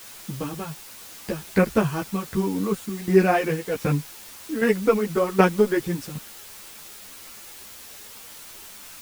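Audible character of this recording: tremolo saw down 1.3 Hz, depth 80%; a quantiser's noise floor 8-bit, dither triangular; a shimmering, thickened sound

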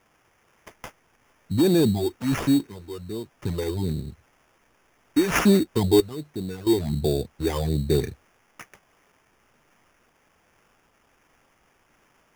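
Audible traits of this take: random-step tremolo 1.5 Hz, depth 100%; a quantiser's noise floor 12-bit, dither triangular; phasing stages 8, 1.3 Hz, lowest notch 170–2900 Hz; aliases and images of a low sample rate 4.1 kHz, jitter 0%

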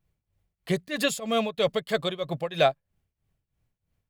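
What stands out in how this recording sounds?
tremolo triangle 3.1 Hz, depth 90%

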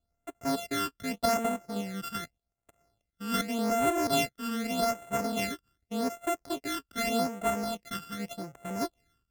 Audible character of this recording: a buzz of ramps at a fixed pitch in blocks of 64 samples; phasing stages 12, 0.84 Hz, lowest notch 680–4800 Hz

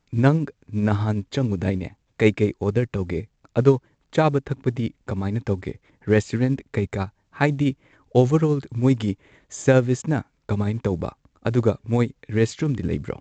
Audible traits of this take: tremolo triangle 12 Hz, depth 45%; µ-law

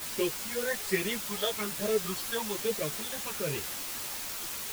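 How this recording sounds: phasing stages 8, 1.2 Hz, lowest notch 330–1300 Hz; a quantiser's noise floor 6-bit, dither triangular; a shimmering, thickened sound

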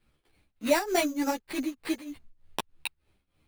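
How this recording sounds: tremolo triangle 3.3 Hz, depth 90%; aliases and images of a low sample rate 6.5 kHz, jitter 0%; a shimmering, thickened sound

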